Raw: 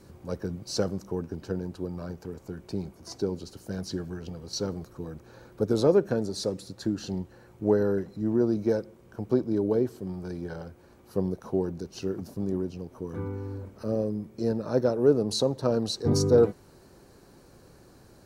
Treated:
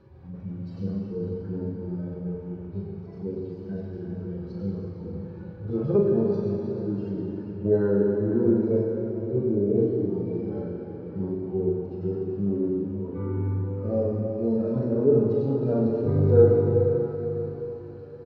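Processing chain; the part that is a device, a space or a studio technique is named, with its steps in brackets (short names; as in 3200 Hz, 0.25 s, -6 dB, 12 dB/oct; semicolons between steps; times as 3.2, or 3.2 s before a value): median-filter separation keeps harmonic; air absorption 320 m; doubler 40 ms -5.5 dB; cathedral (reverb RT60 4.2 s, pre-delay 14 ms, DRR -2 dB)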